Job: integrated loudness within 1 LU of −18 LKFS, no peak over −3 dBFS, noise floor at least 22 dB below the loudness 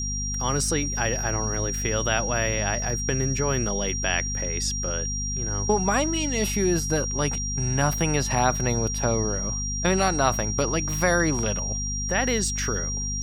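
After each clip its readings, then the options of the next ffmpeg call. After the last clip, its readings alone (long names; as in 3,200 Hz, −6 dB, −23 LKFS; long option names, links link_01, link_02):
mains hum 50 Hz; hum harmonics up to 250 Hz; level of the hum −28 dBFS; interfering tone 5,700 Hz; level of the tone −29 dBFS; integrated loudness −24.5 LKFS; sample peak −6.0 dBFS; target loudness −18.0 LKFS
→ -af "bandreject=frequency=50:width_type=h:width=6,bandreject=frequency=100:width_type=h:width=6,bandreject=frequency=150:width_type=h:width=6,bandreject=frequency=200:width_type=h:width=6,bandreject=frequency=250:width_type=h:width=6"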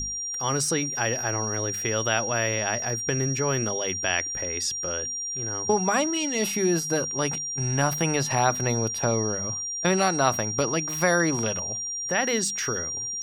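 mains hum none found; interfering tone 5,700 Hz; level of the tone −29 dBFS
→ -af "bandreject=frequency=5700:width=30"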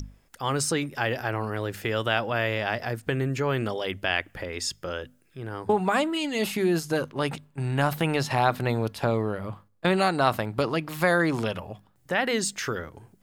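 interfering tone none found; integrated loudness −27.0 LKFS; sample peak −7.0 dBFS; target loudness −18.0 LKFS
→ -af "volume=9dB,alimiter=limit=-3dB:level=0:latency=1"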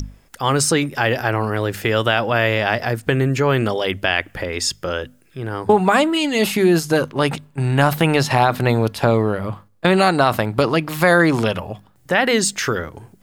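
integrated loudness −18.5 LKFS; sample peak −3.0 dBFS; background noise floor −54 dBFS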